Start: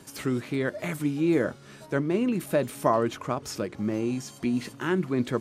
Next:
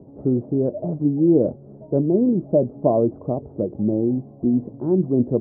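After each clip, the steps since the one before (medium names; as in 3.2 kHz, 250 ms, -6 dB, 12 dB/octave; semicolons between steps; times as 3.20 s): steep low-pass 700 Hz 36 dB/octave; trim +7.5 dB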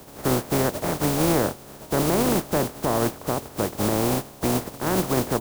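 spectral contrast reduction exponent 0.28; peak limiter -11.5 dBFS, peak gain reduction 8.5 dB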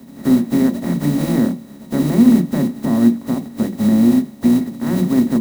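small resonant body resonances 230/1900/3900 Hz, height 16 dB, ringing for 55 ms; on a send at -7 dB: reverberation RT60 0.25 s, pre-delay 3 ms; on the sum: trim -6 dB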